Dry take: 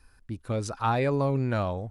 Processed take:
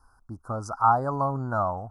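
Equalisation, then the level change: elliptic band-stop 1400–5200 Hz, stop band 80 dB; dynamic EQ 420 Hz, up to -4 dB, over -41 dBFS, Q 2.5; band shelf 970 Hz +12 dB 1.3 oct; -3.5 dB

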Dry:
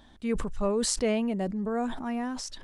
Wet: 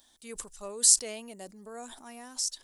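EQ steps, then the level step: tone controls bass -15 dB, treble +15 dB; low shelf 130 Hz +5 dB; high shelf 5000 Hz +11.5 dB; -11.5 dB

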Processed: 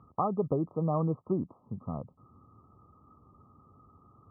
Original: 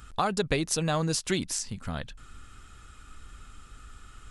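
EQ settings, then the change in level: HPF 98 Hz 24 dB/oct; brick-wall FIR low-pass 1300 Hz; air absorption 470 m; 0.0 dB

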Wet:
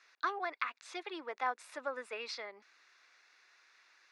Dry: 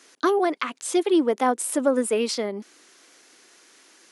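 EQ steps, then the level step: HPF 1300 Hz 12 dB/oct; air absorption 240 m; notch 3100 Hz, Q 5; -3.0 dB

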